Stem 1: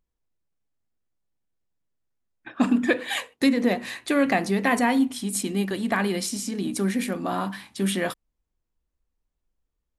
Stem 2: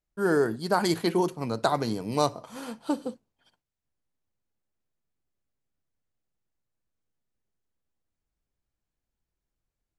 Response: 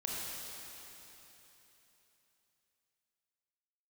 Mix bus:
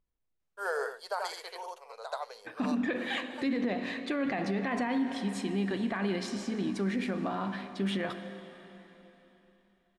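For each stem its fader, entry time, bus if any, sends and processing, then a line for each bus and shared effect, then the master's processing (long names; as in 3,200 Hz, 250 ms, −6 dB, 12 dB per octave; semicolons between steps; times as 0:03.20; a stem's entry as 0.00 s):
−5.0 dB, 0.00 s, send −11.5 dB, no echo send, low-pass filter 3,700 Hz 12 dB per octave
−1.5 dB, 0.40 s, no send, echo send −10 dB, elliptic high-pass filter 480 Hz, stop band 40 dB; high-shelf EQ 11,000 Hz −9 dB; automatic ducking −21 dB, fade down 1.70 s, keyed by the first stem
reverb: on, RT60 3.4 s, pre-delay 22 ms
echo: single-tap delay 82 ms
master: brickwall limiter −23 dBFS, peak gain reduction 10.5 dB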